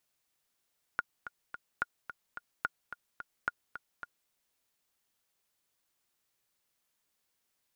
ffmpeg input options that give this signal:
-f lavfi -i "aevalsrc='pow(10,(-16.5-11.5*gte(mod(t,3*60/217),60/217))/20)*sin(2*PI*1430*mod(t,60/217))*exp(-6.91*mod(t,60/217)/0.03)':d=3.31:s=44100"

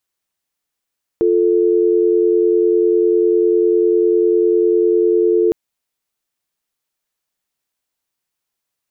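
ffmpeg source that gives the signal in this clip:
-f lavfi -i "aevalsrc='0.211*(sin(2*PI*350*t)+sin(2*PI*440*t))':d=4.31:s=44100"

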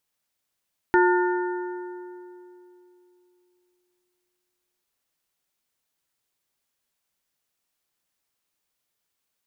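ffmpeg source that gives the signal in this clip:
-f lavfi -i "aevalsrc='0.158*pow(10,-3*t/3.17)*sin(2*PI*359*t)+0.112*pow(10,-3*t/2.408)*sin(2*PI*897.5*t)+0.0794*pow(10,-3*t/2.091)*sin(2*PI*1436*t)+0.0562*pow(10,-3*t/1.956)*sin(2*PI*1795*t)':d=3.9:s=44100"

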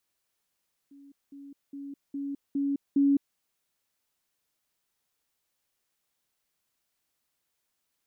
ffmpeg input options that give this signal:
-f lavfi -i "aevalsrc='pow(10,(-49+6*floor(t/0.41))/20)*sin(2*PI*280*t)*clip(min(mod(t,0.41),0.21-mod(t,0.41))/0.005,0,1)':d=2.46:s=44100"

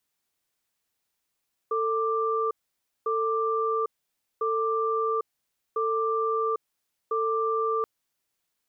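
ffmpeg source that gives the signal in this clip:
-f lavfi -i "aevalsrc='0.0501*(sin(2*PI*446*t)+sin(2*PI*1180*t))*clip(min(mod(t,1.35),0.8-mod(t,1.35))/0.005,0,1)':d=6.13:s=44100"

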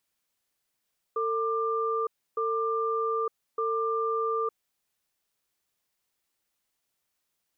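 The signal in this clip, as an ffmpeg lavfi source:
-f lavfi -i "aevalsrc='0.0398*(sin(2*PI*450*t)+sin(2*PI*1190*t))*clip(min(mod(t,1.21),0.91-mod(t,1.21))/0.005,0,1)':d=3.55:s=44100"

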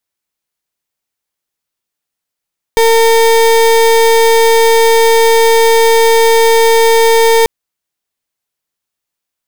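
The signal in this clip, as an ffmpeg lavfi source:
-f lavfi -i "aevalsrc='0.422*(2*lt(mod(455*t,1),0.32)-1)':d=4.69:s=44100"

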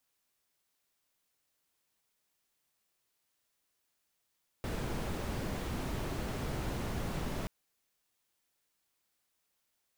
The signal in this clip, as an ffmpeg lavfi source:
-f lavfi -i "anoisesrc=c=brown:a=0.0741:d=2.83:r=44100:seed=1"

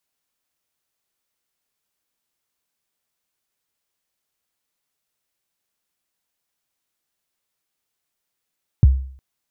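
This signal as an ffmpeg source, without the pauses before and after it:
-f lavfi -i "aevalsrc='0.596*pow(10,-3*t/0.53)*sin(2*PI*(150*0.024/log(66/150)*(exp(log(66/150)*min(t,0.024)/0.024)-1)+66*max(t-0.024,0)))':d=0.36:s=44100"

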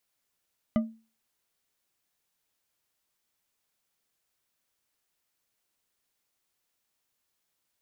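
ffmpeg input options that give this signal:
-f lavfi -i "aevalsrc='0.119*pow(10,-3*t/0.34)*sin(2*PI*224*t)+0.0531*pow(10,-3*t/0.167)*sin(2*PI*617.6*t)+0.0237*pow(10,-3*t/0.104)*sin(2*PI*1210.5*t)+0.0106*pow(10,-3*t/0.073)*sin(2*PI*2001*t)+0.00473*pow(10,-3*t/0.055)*sin(2*PI*2988.2*t)':d=0.89:s=44100"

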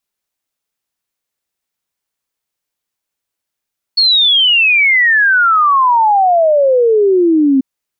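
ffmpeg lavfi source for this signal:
-f lavfi -i "aevalsrc='0.447*clip(min(t,3.64-t)/0.01,0,1)*sin(2*PI*4400*3.64/log(260/4400)*(exp(log(260/4400)*t/3.64)-1))':d=3.64:s=44100"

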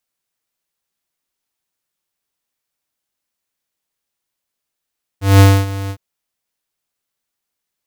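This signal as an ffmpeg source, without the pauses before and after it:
-f lavfi -i "aevalsrc='0.562*(2*lt(mod(98*t,1),0.5)-1)':d=0.759:s=44100,afade=t=in:d=0.186,afade=t=out:st=0.186:d=0.26:silence=0.133,afade=t=out:st=0.69:d=0.069"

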